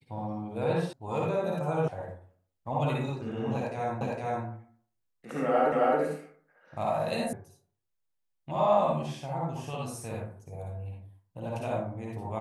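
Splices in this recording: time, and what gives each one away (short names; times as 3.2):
0.93 sound cut off
1.88 sound cut off
4.01 repeat of the last 0.46 s
5.72 repeat of the last 0.27 s
7.33 sound cut off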